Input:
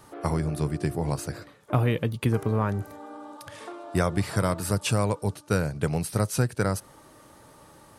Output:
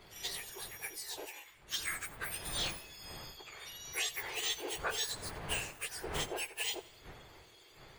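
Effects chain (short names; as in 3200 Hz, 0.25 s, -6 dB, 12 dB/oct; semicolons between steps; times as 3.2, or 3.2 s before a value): spectrum mirrored in octaves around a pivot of 2000 Hz; wind noise 510 Hz -40 dBFS; graphic EQ 250/500/2000/4000 Hz -11/-5/+8/+5 dB; thinning echo 87 ms, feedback 48%, level -19 dB; Doppler distortion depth 0.14 ms; gain -7 dB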